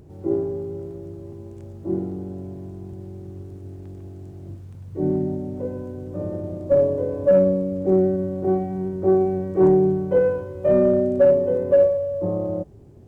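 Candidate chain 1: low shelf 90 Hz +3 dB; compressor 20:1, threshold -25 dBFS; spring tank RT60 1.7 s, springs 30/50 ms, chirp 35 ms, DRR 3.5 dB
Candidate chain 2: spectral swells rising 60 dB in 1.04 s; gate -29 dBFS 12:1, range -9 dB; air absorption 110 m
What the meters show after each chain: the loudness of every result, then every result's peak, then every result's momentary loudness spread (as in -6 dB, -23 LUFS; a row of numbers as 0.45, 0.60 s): -27.5, -20.0 LUFS; -15.0, -7.0 dBFS; 14, 15 LU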